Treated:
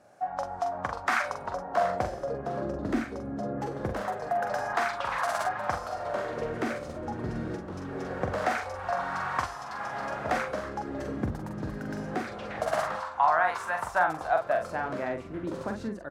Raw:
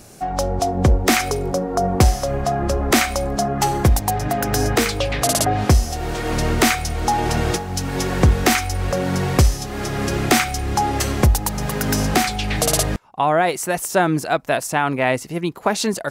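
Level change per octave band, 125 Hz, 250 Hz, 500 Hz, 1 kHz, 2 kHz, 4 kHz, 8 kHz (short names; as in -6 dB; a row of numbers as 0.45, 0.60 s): -19.5, -13.5, -9.5, -7.5, -8.5, -20.5, -25.0 dB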